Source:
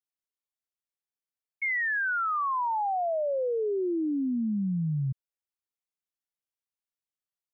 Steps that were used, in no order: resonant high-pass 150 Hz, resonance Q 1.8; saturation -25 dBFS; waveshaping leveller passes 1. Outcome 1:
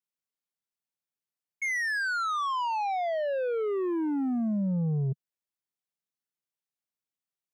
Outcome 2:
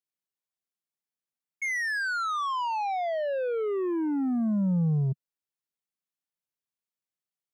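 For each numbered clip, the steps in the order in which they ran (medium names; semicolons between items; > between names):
waveshaping leveller > resonant high-pass > saturation; waveshaping leveller > saturation > resonant high-pass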